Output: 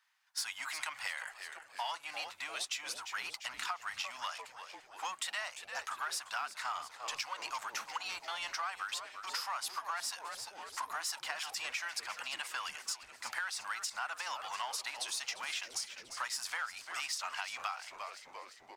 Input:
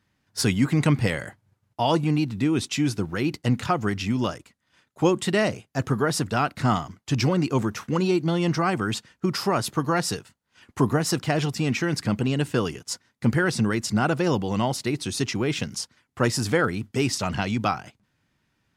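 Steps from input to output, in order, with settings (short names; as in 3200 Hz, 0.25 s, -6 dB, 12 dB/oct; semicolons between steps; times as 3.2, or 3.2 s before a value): in parallel at -5 dB: hard clip -26.5 dBFS, distortion -5 dB; on the sum: inverse Chebyshev high-pass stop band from 440 Hz, stop band 40 dB; frequency-shifting echo 0.346 s, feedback 58%, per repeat -130 Hz, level -14 dB; compressor 6:1, threshold -30 dBFS, peak gain reduction 10.5 dB; gain -5 dB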